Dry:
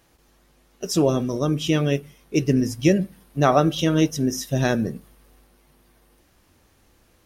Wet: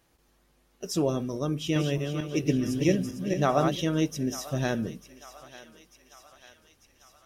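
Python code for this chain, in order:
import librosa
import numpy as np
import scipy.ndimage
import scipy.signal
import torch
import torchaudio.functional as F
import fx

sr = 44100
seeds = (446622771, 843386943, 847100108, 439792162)

y = fx.reverse_delay_fb(x, sr, ms=226, feedback_pct=53, wet_db=-4.0, at=(1.53, 3.76))
y = fx.echo_thinned(y, sr, ms=895, feedback_pct=66, hz=750.0, wet_db=-15.0)
y = y * 10.0 ** (-7.0 / 20.0)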